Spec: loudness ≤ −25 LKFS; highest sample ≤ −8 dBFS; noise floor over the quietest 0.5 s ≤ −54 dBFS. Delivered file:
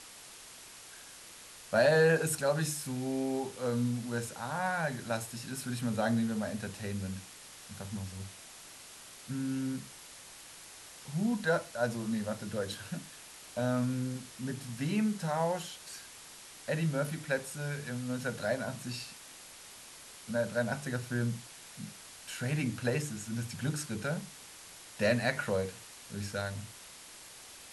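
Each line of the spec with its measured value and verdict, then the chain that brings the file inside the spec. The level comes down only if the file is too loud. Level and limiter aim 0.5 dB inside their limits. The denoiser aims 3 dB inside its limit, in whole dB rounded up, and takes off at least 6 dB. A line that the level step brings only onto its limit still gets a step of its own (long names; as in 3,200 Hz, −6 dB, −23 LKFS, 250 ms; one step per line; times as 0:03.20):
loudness −34.0 LKFS: in spec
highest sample −15.0 dBFS: in spec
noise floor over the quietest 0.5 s −51 dBFS: out of spec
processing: broadband denoise 6 dB, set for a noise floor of −51 dBFS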